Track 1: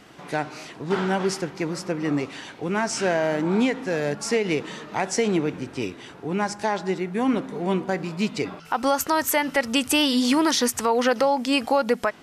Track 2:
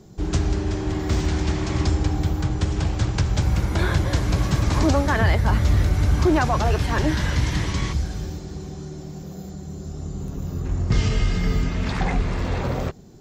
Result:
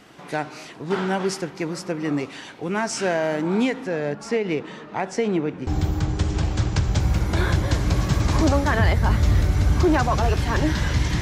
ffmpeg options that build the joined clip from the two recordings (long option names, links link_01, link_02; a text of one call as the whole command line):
ffmpeg -i cue0.wav -i cue1.wav -filter_complex "[0:a]asettb=1/sr,asplit=3[link_01][link_02][link_03];[link_01]atrim=end=3.874[link_04];[link_02]atrim=start=3.87:end=5.67,asetpts=PTS-STARTPTS,afade=type=in:duration=0.004:curve=qsin,afade=type=out:start_time=1.796:duration=0.004:curve=qsin,lowpass=frequency=2200:poles=1[link_05];[link_03]atrim=start=5.666[link_06];[link_04][link_05]acrossfade=duration=0.004:curve1=hsin:curve2=qsin[link_07];[link_07][link_06]acrossfade=duration=0.004:curve1=qsin:curve2=hsin,apad=whole_dur=11.21,atrim=end=11.21,atrim=end=5.672[link_08];[1:a]atrim=start=2.088:end=7.63[link_09];[link_08][link_09]acrossfade=duration=0.004:curve1=hsin:curve2=hsin" out.wav